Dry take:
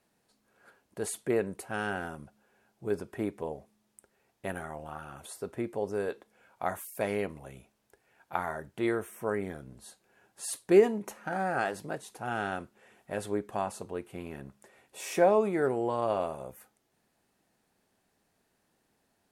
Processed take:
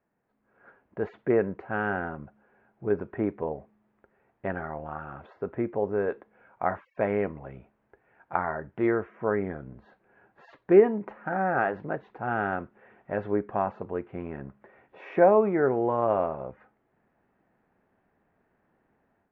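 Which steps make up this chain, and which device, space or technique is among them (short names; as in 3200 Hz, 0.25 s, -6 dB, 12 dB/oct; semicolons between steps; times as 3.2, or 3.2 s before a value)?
action camera in a waterproof case (LPF 2000 Hz 24 dB/oct; AGC gain up to 9 dB; gain -4 dB; AAC 64 kbps 16000 Hz)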